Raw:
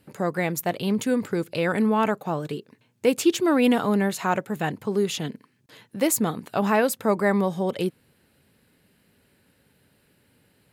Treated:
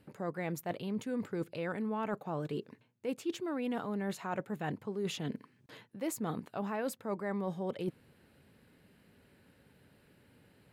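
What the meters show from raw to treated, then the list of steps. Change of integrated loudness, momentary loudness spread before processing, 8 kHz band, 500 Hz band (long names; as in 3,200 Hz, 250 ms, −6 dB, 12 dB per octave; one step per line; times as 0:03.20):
−13.5 dB, 9 LU, −17.0 dB, −13.5 dB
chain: high-shelf EQ 3,700 Hz −9 dB
reversed playback
downward compressor 6 to 1, threshold −34 dBFS, peak gain reduction 18.5 dB
reversed playback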